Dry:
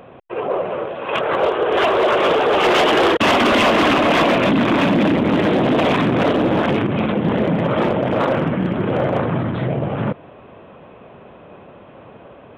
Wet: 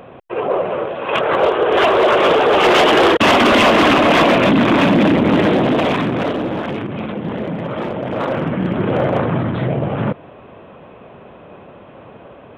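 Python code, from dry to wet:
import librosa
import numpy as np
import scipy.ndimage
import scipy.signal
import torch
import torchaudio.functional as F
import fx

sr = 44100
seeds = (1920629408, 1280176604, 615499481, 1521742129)

y = fx.gain(x, sr, db=fx.line((5.4, 3.0), (6.63, -5.5), (7.88, -5.5), (8.79, 2.0)))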